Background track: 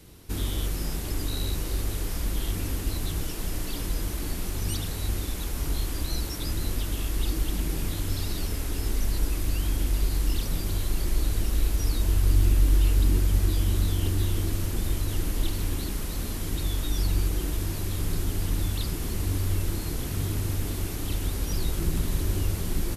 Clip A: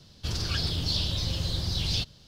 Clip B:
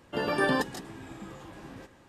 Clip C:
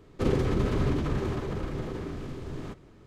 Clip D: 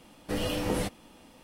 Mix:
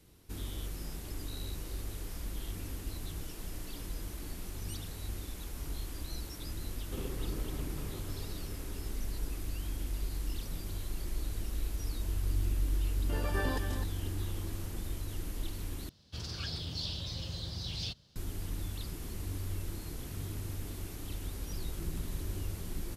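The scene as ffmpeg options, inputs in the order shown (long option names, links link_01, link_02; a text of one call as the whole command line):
ffmpeg -i bed.wav -i cue0.wav -i cue1.wav -i cue2.wav -filter_complex "[0:a]volume=-11dB[link_01];[2:a]aecho=1:1:255:0.355[link_02];[1:a]highpass=41[link_03];[link_01]asplit=2[link_04][link_05];[link_04]atrim=end=15.894[link_06];[link_03]atrim=end=2.27,asetpts=PTS-STARTPTS,volume=-9.5dB[link_07];[link_05]atrim=start=18.156[link_08];[3:a]atrim=end=3.06,asetpts=PTS-STARTPTS,volume=-16.5dB,afade=type=in:duration=0.004:curve=hsin,afade=type=out:start_time=3.056:duration=0.004:curve=hsin,adelay=6720[link_09];[link_02]atrim=end=2.08,asetpts=PTS-STARTPTS,volume=-10dB,afade=type=in:duration=0.004:curve=hsin,afade=type=out:start_time=2.076:duration=0.004:curve=hsin,adelay=12960[link_10];[link_06][link_07]acrossfade=duration=0.004:curve1=hsin:curve2=hsin[link_11];[link_11][link_08]acrossfade=duration=0.004:curve1=hsin:curve2=hsin[link_12];[link_12][link_09][link_10]amix=inputs=3:normalize=0" out.wav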